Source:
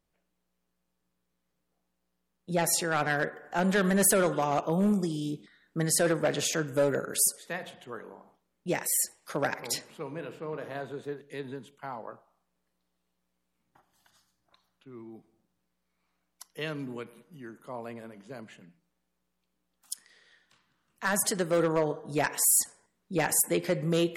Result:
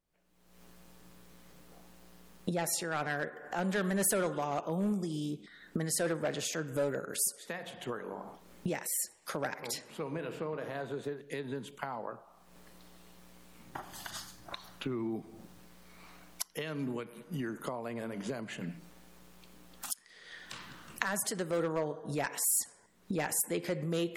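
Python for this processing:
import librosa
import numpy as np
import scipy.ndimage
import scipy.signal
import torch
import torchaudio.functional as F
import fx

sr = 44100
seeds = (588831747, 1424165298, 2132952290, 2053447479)

y = fx.recorder_agc(x, sr, target_db=-22.5, rise_db_per_s=48.0, max_gain_db=30)
y = F.gain(torch.from_numpy(y), -6.5).numpy()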